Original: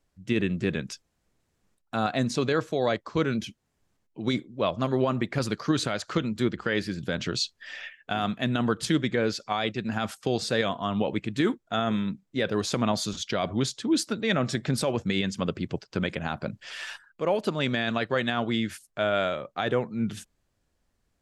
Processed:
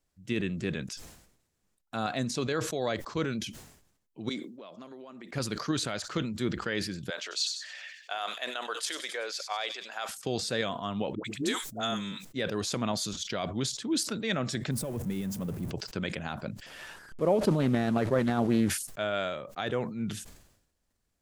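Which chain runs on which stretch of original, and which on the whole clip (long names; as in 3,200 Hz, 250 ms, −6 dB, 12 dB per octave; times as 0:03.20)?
0:04.29–0:05.33: high-pass filter 200 Hz 24 dB per octave + downward compressor 10 to 1, threshold −37 dBFS
0:07.10–0:10.09: high-pass filter 520 Hz 24 dB per octave + delay with a high-pass on its return 95 ms, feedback 53%, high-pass 4,300 Hz, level −9 dB
0:11.15–0:12.25: bass and treble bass −4 dB, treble +12 dB + all-pass dispersion highs, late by 95 ms, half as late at 590 Hz
0:14.71–0:15.71: converter with a step at zero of −29 dBFS + drawn EQ curve 160 Hz 0 dB, 4,300 Hz −19 dB, 10,000 Hz −9 dB
0:16.66–0:18.70: linear delta modulator 64 kbit/s, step −38.5 dBFS + tilt shelving filter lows +9 dB, about 1,300 Hz + highs frequency-modulated by the lows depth 0.19 ms
whole clip: high-shelf EQ 4,900 Hz +7.5 dB; level that may fall only so fast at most 72 dB per second; level −6 dB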